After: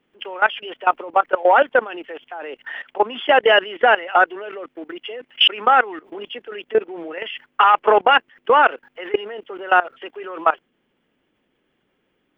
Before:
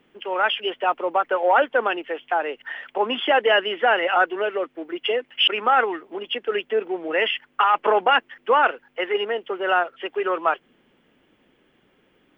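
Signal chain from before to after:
output level in coarse steps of 19 dB
level +7 dB

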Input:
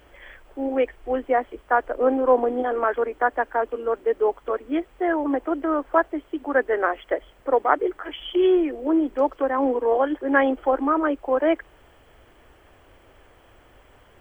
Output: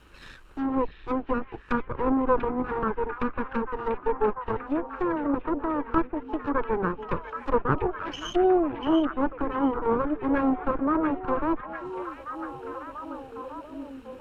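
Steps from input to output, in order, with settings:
lower of the sound and its delayed copy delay 0.73 ms
treble cut that deepens with the level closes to 940 Hz, closed at −23 dBFS
echo through a band-pass that steps 692 ms, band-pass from 2,600 Hz, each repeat −0.7 octaves, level −3.5 dB

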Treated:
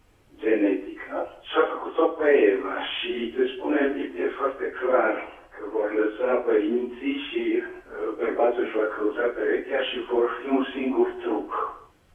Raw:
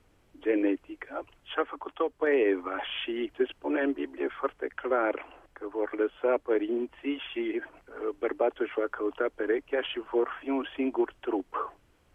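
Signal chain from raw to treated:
random phases in long frames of 100 ms
0:01.17–0:02.07: dynamic equaliser 540 Hz, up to +6 dB, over −41 dBFS, Q 0.87
reverb whose tail is shaped and stops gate 250 ms falling, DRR 9.5 dB
level +5 dB

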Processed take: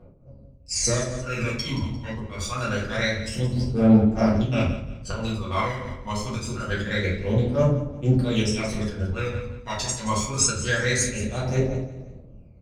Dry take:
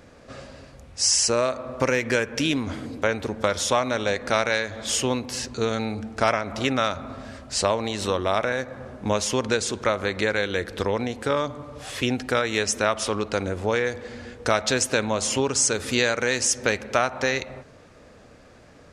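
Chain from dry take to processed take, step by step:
adaptive Wiener filter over 25 samples
noise gate −39 dBFS, range −20 dB
high-pass filter 44 Hz 12 dB per octave
low-shelf EQ 100 Hz +7.5 dB
reversed playback
upward compression, threshold −44 dBFS
reversed playback
volume swells 134 ms
phase shifter 0.17 Hz, delay 1.1 ms, feedback 76%
tempo change 1.5×
repeating echo 174 ms, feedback 33%, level −12 dB
rectangular room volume 59 cubic metres, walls mixed, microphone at 1.7 metres
amplitude modulation by smooth noise, depth 60%
level −7 dB

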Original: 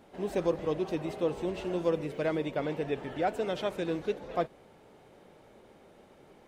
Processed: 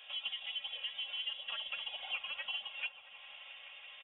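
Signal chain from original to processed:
gliding playback speed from 140% → 181%
comb filter 3.6 ms, depth 61%
downward compressor 2.5 to 1, threshold −46 dBFS, peak gain reduction 16 dB
tuned comb filter 850 Hz, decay 0.17 s, harmonics all, mix 60%
voice inversion scrambler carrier 3,600 Hz
low shelf with overshoot 440 Hz −12.5 dB, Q 3
on a send: echo whose low-pass opens from repeat to repeat 167 ms, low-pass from 200 Hz, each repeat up 1 octave, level −6 dB
on the sum: level +8.5 dB

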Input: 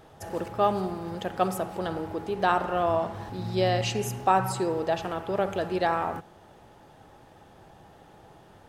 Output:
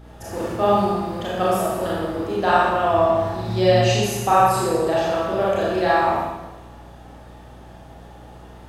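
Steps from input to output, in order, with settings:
four-comb reverb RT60 1.1 s, combs from 27 ms, DRR −7 dB
mains hum 60 Hz, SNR 23 dB

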